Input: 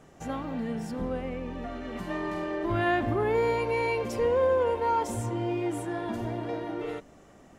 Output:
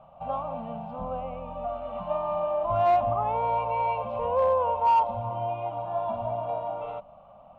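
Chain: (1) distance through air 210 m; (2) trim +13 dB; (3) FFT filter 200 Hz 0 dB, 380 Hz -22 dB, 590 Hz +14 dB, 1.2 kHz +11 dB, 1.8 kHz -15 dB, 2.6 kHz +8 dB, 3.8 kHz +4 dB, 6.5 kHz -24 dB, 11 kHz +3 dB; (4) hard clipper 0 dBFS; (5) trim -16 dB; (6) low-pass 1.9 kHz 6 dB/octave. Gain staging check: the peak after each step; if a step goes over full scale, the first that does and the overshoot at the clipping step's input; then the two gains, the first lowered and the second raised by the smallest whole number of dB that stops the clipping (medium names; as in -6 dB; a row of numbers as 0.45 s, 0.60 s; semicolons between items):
-15.5 dBFS, -2.5 dBFS, +4.5 dBFS, 0.0 dBFS, -16.0 dBFS, -16.0 dBFS; step 3, 4.5 dB; step 2 +8 dB, step 5 -11 dB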